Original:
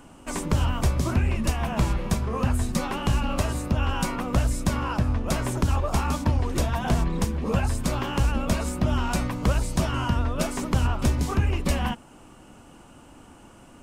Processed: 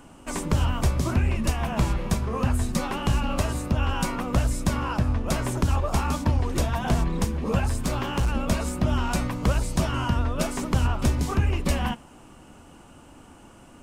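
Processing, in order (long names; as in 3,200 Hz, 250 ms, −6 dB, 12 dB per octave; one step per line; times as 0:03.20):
0:07.60–0:08.33: hard clipping −18.5 dBFS, distortion −27 dB
on a send: convolution reverb, pre-delay 3 ms, DRR 23 dB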